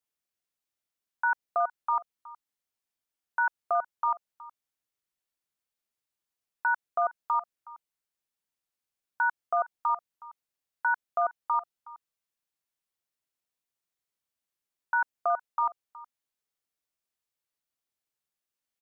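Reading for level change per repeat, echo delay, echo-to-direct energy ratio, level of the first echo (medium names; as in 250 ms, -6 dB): no regular repeats, 368 ms, -19.0 dB, -19.0 dB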